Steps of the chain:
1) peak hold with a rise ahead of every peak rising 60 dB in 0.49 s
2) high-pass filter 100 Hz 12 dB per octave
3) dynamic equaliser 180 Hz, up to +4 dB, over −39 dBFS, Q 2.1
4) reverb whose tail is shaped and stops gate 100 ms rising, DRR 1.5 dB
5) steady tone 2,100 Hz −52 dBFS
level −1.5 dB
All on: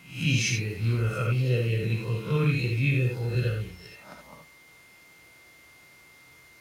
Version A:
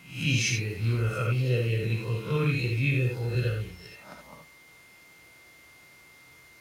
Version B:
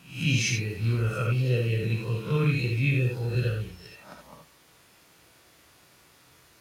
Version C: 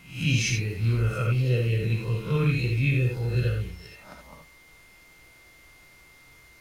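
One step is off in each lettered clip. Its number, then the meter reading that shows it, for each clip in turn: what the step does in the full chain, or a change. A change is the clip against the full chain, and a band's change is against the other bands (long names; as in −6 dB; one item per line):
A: 3, change in momentary loudness spread +9 LU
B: 5, change in momentary loudness spread −4 LU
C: 2, 125 Hz band +1.5 dB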